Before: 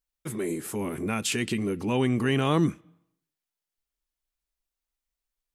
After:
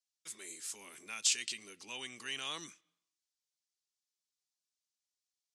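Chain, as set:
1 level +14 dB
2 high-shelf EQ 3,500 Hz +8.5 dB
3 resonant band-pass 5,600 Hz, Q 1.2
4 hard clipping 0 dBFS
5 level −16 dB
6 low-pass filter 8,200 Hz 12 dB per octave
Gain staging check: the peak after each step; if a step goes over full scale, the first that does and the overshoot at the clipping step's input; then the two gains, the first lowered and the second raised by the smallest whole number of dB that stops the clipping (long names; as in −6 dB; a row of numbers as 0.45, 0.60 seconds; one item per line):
+3.0, +7.0, +4.5, 0.0, −16.0, −16.0 dBFS
step 1, 4.5 dB
step 1 +9 dB, step 5 −11 dB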